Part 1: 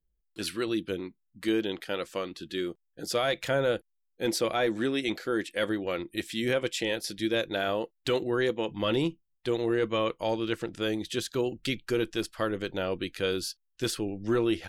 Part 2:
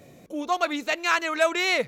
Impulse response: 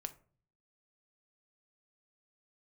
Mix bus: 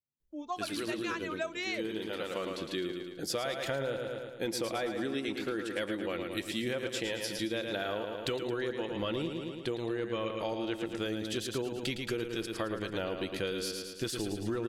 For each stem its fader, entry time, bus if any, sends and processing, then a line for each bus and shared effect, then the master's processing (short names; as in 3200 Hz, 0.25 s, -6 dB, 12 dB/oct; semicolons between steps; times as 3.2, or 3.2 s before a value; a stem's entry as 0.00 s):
+0.5 dB, 0.20 s, no send, echo send -7 dB, auto duck -14 dB, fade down 1.75 s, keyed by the second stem
-12.0 dB, 0.00 s, send -3.5 dB, no echo send, per-bin expansion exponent 1.5; gate -47 dBFS, range -33 dB; steep low-pass 7700 Hz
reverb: on, RT60 0.45 s, pre-delay 5 ms
echo: feedback echo 0.11 s, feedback 54%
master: compressor, threshold -31 dBFS, peak gain reduction 10.5 dB